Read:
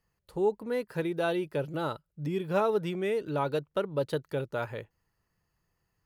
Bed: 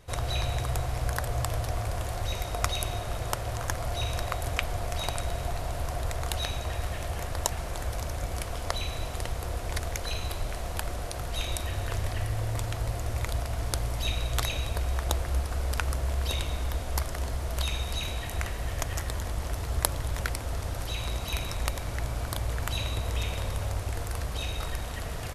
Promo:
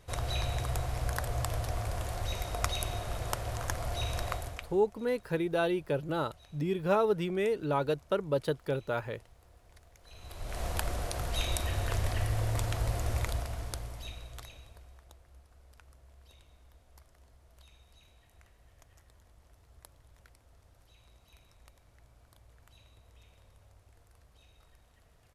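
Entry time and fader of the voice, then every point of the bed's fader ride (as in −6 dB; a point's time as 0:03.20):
4.35 s, 0.0 dB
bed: 0:04.34 −3.5 dB
0:04.92 −27 dB
0:09.97 −27 dB
0:10.62 −0.5 dB
0:13.15 −0.5 dB
0:15.15 −29 dB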